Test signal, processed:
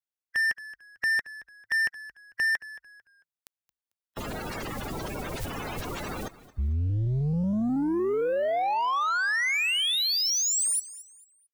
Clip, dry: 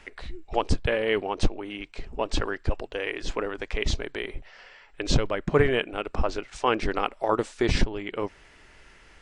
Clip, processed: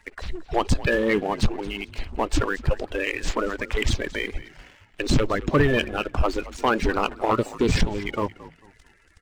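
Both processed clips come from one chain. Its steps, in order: bin magnitudes rounded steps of 30 dB; sample leveller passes 2; frequency-shifting echo 0.223 s, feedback 31%, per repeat -59 Hz, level -17.5 dB; gain -2.5 dB

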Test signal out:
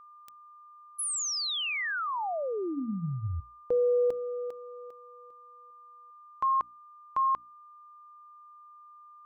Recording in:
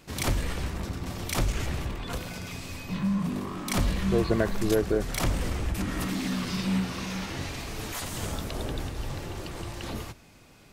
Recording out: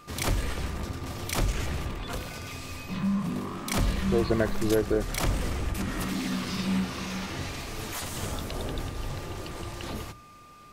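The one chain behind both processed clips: notches 60/120/180/240/300 Hz; whine 1200 Hz -50 dBFS

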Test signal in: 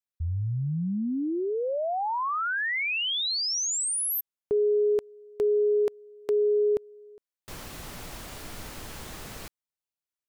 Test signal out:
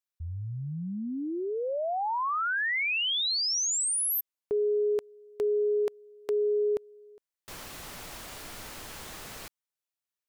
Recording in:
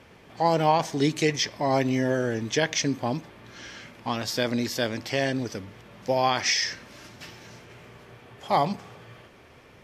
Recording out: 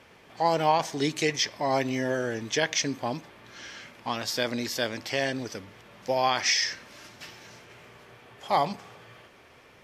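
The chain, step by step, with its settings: low shelf 360 Hz -7.5 dB

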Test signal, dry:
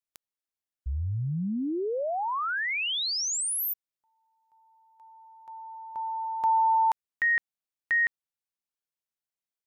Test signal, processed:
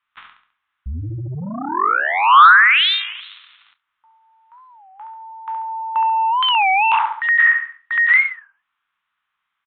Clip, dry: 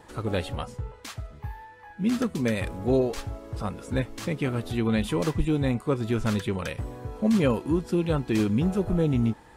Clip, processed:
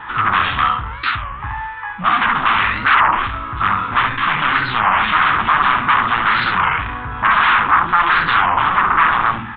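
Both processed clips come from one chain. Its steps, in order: spectral trails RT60 0.32 s; on a send: feedback echo 69 ms, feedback 39%, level -5.5 dB; on the sum: sine folder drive 19 dB, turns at -8 dBFS; air absorption 250 m; downsampling 8000 Hz; resonant low shelf 790 Hz -14 dB, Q 3; record warp 33 1/3 rpm, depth 250 cents; gain -1 dB

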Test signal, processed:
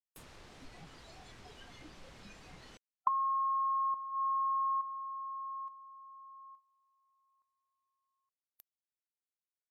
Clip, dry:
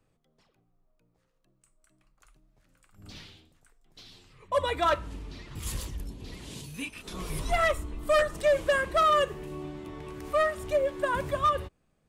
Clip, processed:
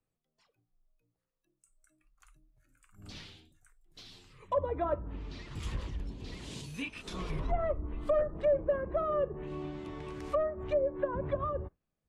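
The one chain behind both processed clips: treble ducked by the level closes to 610 Hz, closed at -25 dBFS; spectral noise reduction 14 dB; gain -1 dB

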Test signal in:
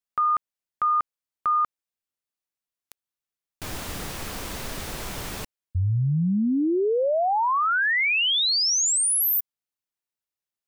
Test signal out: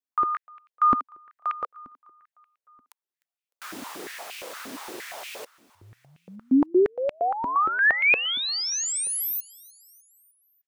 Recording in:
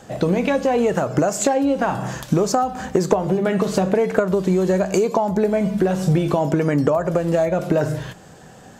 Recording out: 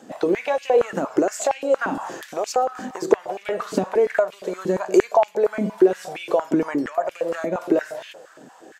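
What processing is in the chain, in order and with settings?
feedback echo 0.303 s, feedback 55%, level -22.5 dB; stepped high-pass 8.6 Hz 260–2500 Hz; gain -6 dB

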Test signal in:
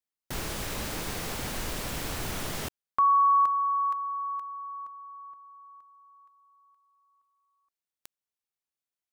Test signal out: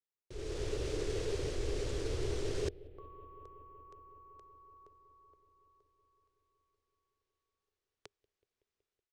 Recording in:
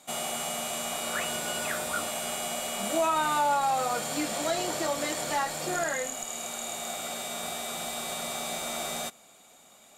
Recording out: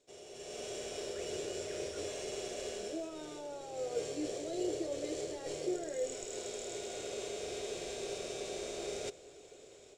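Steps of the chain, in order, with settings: reverse; compressor, threshold -37 dBFS; reverse; EQ curve 110 Hz 0 dB, 210 Hz -19 dB, 410 Hz +9 dB, 1000 Hz -28 dB, 6000 Hz -6 dB; on a send: analogue delay 0.187 s, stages 4096, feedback 82%, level -21.5 dB; on the sum: AGC gain up to 12.5 dB; careless resampling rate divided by 3×, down none, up hold; air absorption 67 m; gain -5 dB

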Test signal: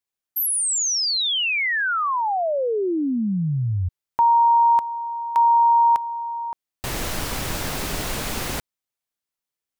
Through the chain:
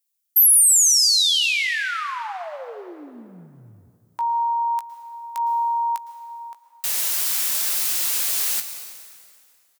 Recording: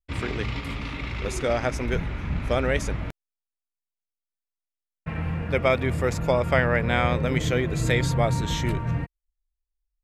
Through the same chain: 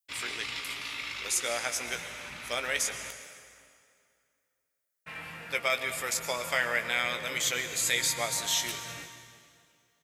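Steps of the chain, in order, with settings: differentiator; in parallel at 0 dB: limiter -25 dBFS; on the sum: doubler 17 ms -9 dB; plate-style reverb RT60 2.3 s, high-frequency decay 0.85×, pre-delay 0.1 s, DRR 9.5 dB; gain +3 dB

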